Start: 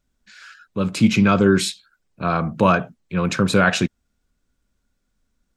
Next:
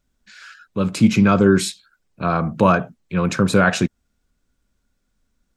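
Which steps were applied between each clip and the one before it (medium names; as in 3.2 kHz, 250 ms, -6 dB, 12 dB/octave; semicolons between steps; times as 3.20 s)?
dynamic bell 3.1 kHz, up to -5 dB, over -34 dBFS, Q 0.94; trim +1.5 dB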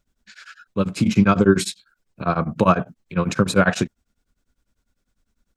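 tremolo of two beating tones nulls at 10 Hz; trim +1.5 dB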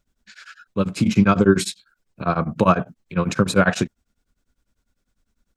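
no audible change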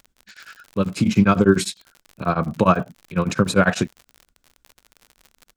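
crackle 58 per s -32 dBFS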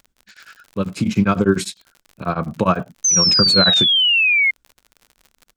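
painted sound fall, 3.04–4.51 s, 2.1–6.3 kHz -14 dBFS; trim -1 dB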